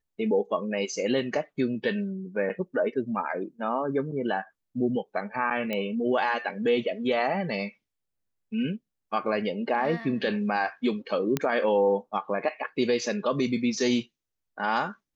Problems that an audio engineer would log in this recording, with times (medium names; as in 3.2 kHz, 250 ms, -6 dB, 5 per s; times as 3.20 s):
5.73 s: pop -17 dBFS
11.37 s: pop -11 dBFS